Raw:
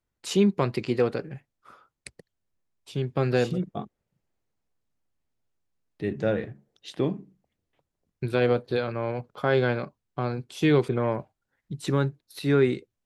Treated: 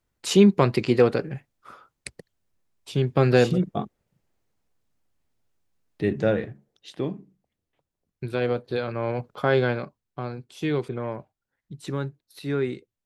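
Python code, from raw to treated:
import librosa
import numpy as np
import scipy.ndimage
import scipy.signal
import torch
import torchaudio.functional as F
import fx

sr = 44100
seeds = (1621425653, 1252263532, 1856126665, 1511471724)

y = fx.gain(x, sr, db=fx.line((6.03, 5.5), (6.9, -2.5), (8.61, -2.5), (9.25, 4.0), (10.41, -5.0)))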